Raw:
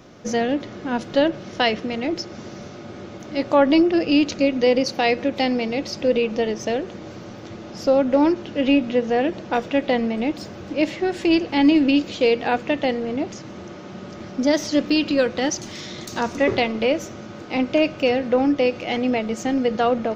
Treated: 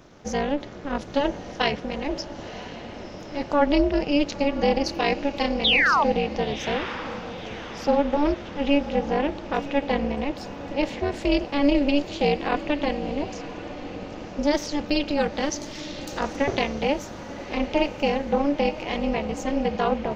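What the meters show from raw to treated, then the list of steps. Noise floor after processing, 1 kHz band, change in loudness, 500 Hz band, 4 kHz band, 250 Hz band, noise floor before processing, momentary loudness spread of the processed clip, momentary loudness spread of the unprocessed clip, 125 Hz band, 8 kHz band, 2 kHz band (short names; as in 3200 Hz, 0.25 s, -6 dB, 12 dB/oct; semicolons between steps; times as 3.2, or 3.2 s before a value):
-39 dBFS, -0.5 dB, -4.0 dB, -4.5 dB, -1.0 dB, -5.0 dB, -38 dBFS, 14 LU, 19 LU, +1.0 dB, n/a, -0.5 dB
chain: painted sound fall, 5.64–6.04, 810–3900 Hz -15 dBFS; AM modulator 290 Hz, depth 95%; diffused feedback echo 1.017 s, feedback 47%, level -13 dB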